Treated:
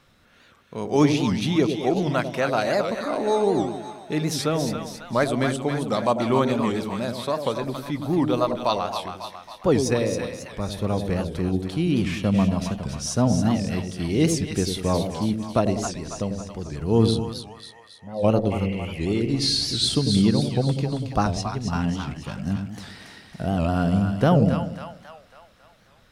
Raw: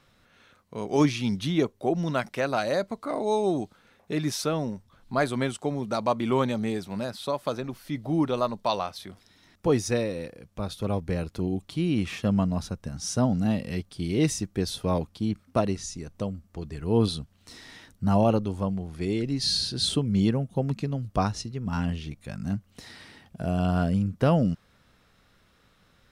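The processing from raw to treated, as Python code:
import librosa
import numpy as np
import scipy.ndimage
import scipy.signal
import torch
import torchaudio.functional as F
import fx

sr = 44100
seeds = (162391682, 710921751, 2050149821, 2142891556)

p1 = fx.formant_cascade(x, sr, vowel='e', at=(17.21, 18.23), fade=0.02)
p2 = fx.spec_repair(p1, sr, seeds[0], start_s=18.54, length_s=0.54, low_hz=550.0, high_hz=3200.0, source='after')
p3 = p2 + fx.echo_split(p2, sr, split_hz=710.0, low_ms=96, high_ms=273, feedback_pct=52, wet_db=-6, dry=0)
p4 = fx.record_warp(p3, sr, rpm=78.0, depth_cents=160.0)
y = p4 * 10.0 ** (3.0 / 20.0)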